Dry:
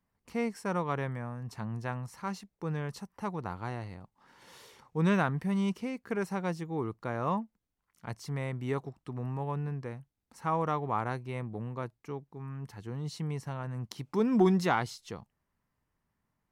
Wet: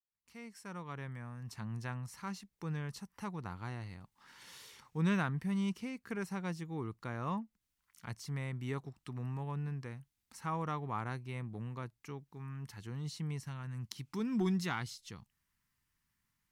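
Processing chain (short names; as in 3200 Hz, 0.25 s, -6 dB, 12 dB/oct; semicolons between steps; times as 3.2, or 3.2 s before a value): opening faded in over 1.79 s; bell 590 Hz -8.5 dB 1.8 oct, from 13.41 s -15 dB; mismatched tape noise reduction encoder only; gain -2.5 dB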